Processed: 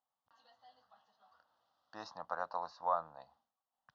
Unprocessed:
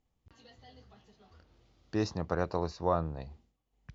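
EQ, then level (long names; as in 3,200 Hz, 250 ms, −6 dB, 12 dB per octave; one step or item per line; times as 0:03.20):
band-pass filter 710–6,400 Hz
high-frequency loss of the air 190 metres
phaser with its sweep stopped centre 950 Hz, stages 4
+2.0 dB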